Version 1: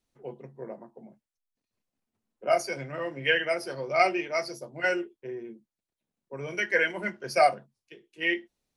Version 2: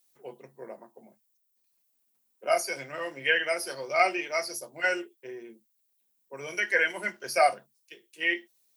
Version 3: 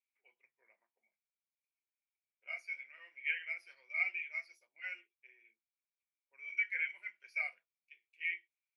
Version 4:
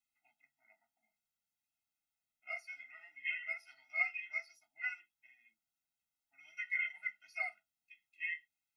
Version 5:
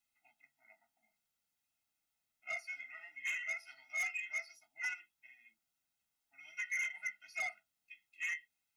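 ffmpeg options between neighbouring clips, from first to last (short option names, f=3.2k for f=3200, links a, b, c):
-filter_complex "[0:a]acrossover=split=2600[a][b];[b]acompressor=threshold=-43dB:ratio=4:attack=1:release=60[c];[a][c]amix=inputs=2:normalize=0,aemphasis=mode=production:type=riaa"
-af "bandpass=f=2.3k:t=q:w=16:csg=0"
-af "afftfilt=real='re*eq(mod(floor(b*sr/1024/310),2),0)':imag='im*eq(mod(floor(b*sr/1024/310),2),0)':win_size=1024:overlap=0.75,volume=6dB"
-af "asoftclip=type=tanh:threshold=-37.5dB,volume=4.5dB"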